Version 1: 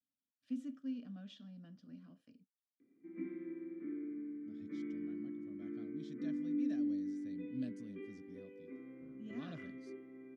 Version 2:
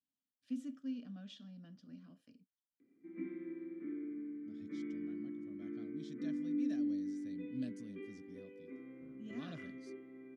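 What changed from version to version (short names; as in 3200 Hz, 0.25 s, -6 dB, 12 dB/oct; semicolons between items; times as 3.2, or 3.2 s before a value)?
master: add high shelf 4000 Hz +6.5 dB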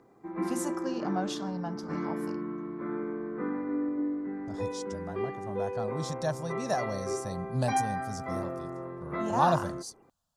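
background: entry -2.80 s; master: remove vowel filter i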